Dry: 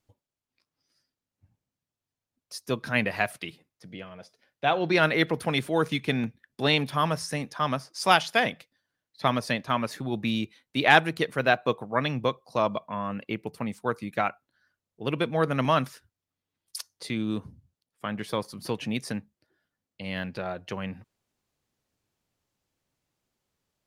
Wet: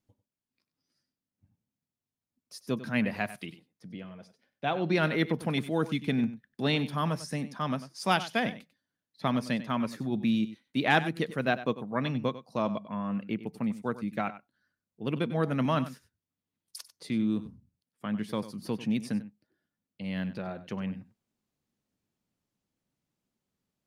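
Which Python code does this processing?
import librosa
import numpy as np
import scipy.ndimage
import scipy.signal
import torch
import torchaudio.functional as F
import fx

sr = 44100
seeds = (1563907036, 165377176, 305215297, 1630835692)

y = fx.peak_eq(x, sr, hz=210.0, db=10.0, octaves=1.2)
y = y + 10.0 ** (-14.5 / 20.0) * np.pad(y, (int(96 * sr / 1000.0), 0))[:len(y)]
y = y * 10.0 ** (-7.0 / 20.0)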